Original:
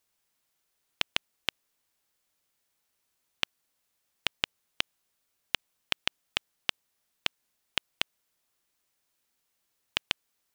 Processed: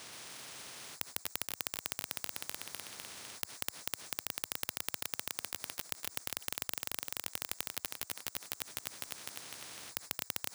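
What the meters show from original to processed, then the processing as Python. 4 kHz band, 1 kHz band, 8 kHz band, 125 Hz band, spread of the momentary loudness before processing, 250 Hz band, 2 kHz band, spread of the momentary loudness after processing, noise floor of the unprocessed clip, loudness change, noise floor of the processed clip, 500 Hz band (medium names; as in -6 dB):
-8.5 dB, -3.0 dB, +9.5 dB, -1.0 dB, 3 LU, -1.5 dB, -7.5 dB, 8 LU, -78 dBFS, -5.5 dB, -60 dBFS, -2.0 dB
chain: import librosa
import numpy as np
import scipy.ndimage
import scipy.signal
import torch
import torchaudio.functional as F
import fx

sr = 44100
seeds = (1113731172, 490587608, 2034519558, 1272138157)

y = fx.reverse_delay_fb(x, sr, ms=126, feedback_pct=62, wet_db=-3.0)
y = scipy.signal.sosfilt(scipy.signal.butter(4, 94.0, 'highpass', fs=sr, output='sos'), y)
y = fx.over_compress(y, sr, threshold_db=-32.0, ratio=-1.0)
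y = 10.0 ** (-24.0 / 20.0) * np.tanh(y / 10.0 ** (-24.0 / 20.0))
y = np.repeat(scipy.signal.resample_poly(y, 1, 3), 3)[:len(y)]
y = fx.spectral_comp(y, sr, ratio=10.0)
y = y * librosa.db_to_amplitude(11.0)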